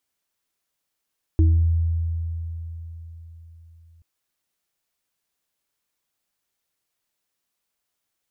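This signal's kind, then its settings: sine partials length 2.63 s, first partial 82.9 Hz, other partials 319 Hz, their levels -8 dB, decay 4.14 s, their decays 0.44 s, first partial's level -12 dB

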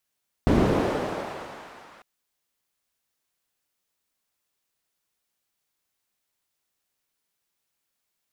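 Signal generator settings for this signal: swept filtered noise pink, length 1.55 s bandpass, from 180 Hz, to 1100 Hz, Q 0.96, linear, gain ramp -36 dB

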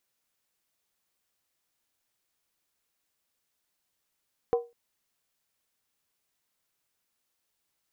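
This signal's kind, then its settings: skin hit length 0.20 s, lowest mode 473 Hz, decay 0.26 s, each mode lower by 9 dB, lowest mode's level -18 dB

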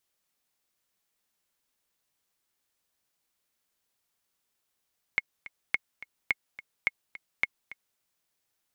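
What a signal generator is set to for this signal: metronome 213 bpm, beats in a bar 2, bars 5, 2170 Hz, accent 17.5 dB -11 dBFS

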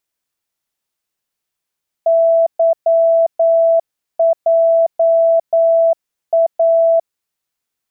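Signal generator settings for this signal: Morse "YJA" 9 wpm 662 Hz -8.5 dBFS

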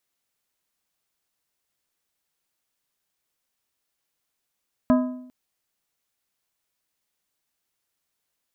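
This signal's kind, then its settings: metal hit plate, length 0.40 s, lowest mode 252 Hz, decay 0.74 s, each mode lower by 6 dB, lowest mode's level -13 dB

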